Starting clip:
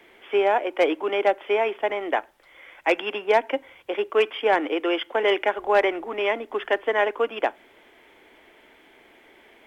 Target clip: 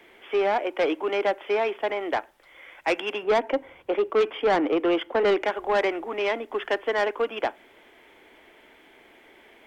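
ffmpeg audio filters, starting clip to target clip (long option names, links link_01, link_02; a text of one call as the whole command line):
ffmpeg -i in.wav -filter_complex "[0:a]asettb=1/sr,asplit=3[link_01][link_02][link_03];[link_01]atrim=end=3.234[link_04];[link_02]atrim=start=3.23:end=5.45,asetpts=PTS-STARTPTS,afade=type=in:duration=0.004:curve=qsin,afade=type=out:start_time=2.216:duration=0.004:curve=qsin,tiltshelf=frequency=1500:gain=6[link_05];[link_03]atrim=start=5.446[link_06];[link_04][link_05]acrossfade=duration=0.004:curve1=hsin:curve2=qsin[link_07];[link_07][link_06]acrossfade=duration=0.004:curve1=qsin:curve2=hsin,asoftclip=type=tanh:threshold=-16.5dB" out.wav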